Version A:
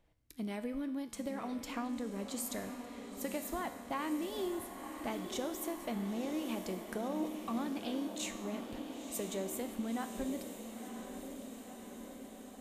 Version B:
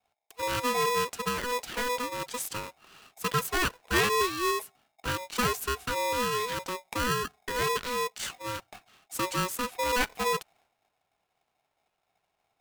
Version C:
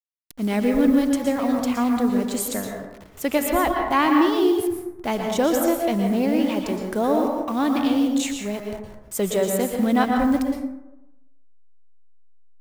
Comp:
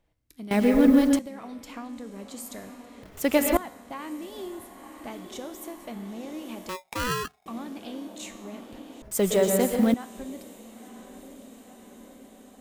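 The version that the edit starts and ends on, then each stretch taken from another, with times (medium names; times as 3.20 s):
A
0.51–1.19 s: from C
3.03–3.57 s: from C
6.69–7.46 s: from B
9.02–9.94 s: from C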